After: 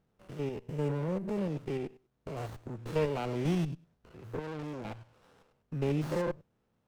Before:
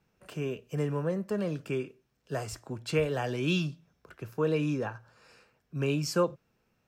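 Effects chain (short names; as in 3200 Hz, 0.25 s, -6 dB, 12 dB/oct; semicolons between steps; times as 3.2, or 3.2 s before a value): stepped spectrum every 0.1 s; 4.39–4.85 tube stage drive 36 dB, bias 0.65; running maximum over 17 samples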